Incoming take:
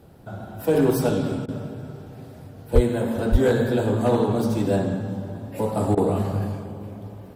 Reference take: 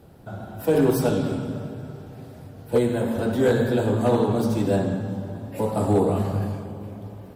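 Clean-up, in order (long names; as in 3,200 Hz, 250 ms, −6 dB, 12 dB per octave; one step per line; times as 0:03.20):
high-pass at the plosives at 0:02.74/0:03.31
repair the gap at 0:01.46/0:05.95, 22 ms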